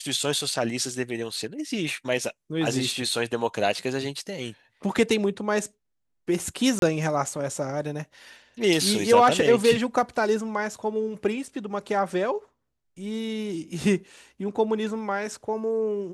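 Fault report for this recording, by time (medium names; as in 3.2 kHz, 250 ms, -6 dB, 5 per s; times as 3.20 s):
6.79–6.82 s: dropout 32 ms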